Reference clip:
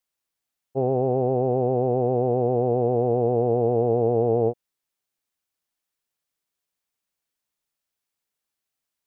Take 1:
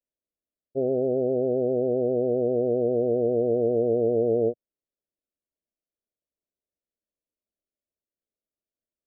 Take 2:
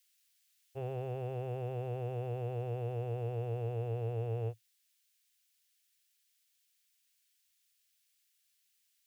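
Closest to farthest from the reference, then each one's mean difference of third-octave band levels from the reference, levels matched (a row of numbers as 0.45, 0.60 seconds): 1, 2; 3.5, 8.5 decibels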